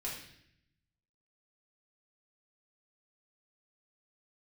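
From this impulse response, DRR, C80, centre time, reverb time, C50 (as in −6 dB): −5.5 dB, 7.0 dB, 43 ms, 0.70 s, 3.5 dB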